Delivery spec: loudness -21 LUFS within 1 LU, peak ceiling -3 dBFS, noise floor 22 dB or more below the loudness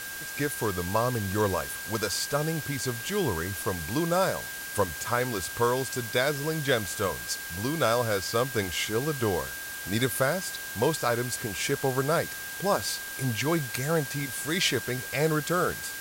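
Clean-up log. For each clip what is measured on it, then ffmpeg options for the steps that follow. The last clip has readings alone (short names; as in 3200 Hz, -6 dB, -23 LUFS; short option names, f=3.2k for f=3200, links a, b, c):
steady tone 1600 Hz; tone level -38 dBFS; noise floor -38 dBFS; noise floor target -50 dBFS; loudness -28.0 LUFS; peak -11.5 dBFS; loudness target -21.0 LUFS
-> -af "bandreject=f=1.6k:w=30"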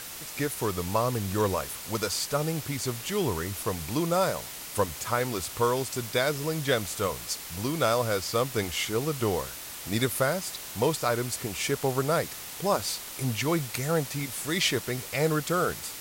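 steady tone none; noise floor -40 dBFS; noise floor target -51 dBFS
-> -af "afftdn=nr=11:nf=-40"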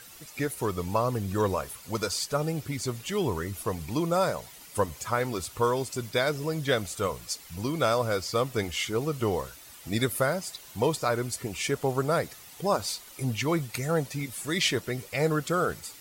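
noise floor -49 dBFS; noise floor target -51 dBFS
-> -af "afftdn=nr=6:nf=-49"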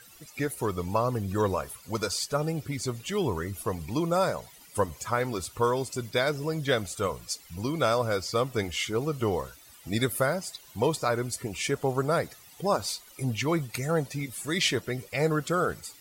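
noise floor -53 dBFS; loudness -29.0 LUFS; peak -12.0 dBFS; loudness target -21.0 LUFS
-> -af "volume=8dB"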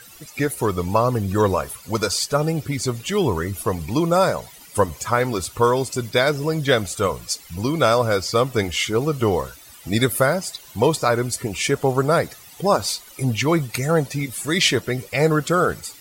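loudness -21.0 LUFS; peak -4.0 dBFS; noise floor -45 dBFS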